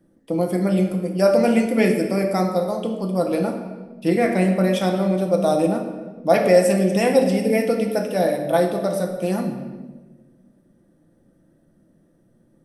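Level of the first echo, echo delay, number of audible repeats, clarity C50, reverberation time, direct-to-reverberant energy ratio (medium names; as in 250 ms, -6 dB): no echo, no echo, no echo, 6.5 dB, 1.3 s, 2.5 dB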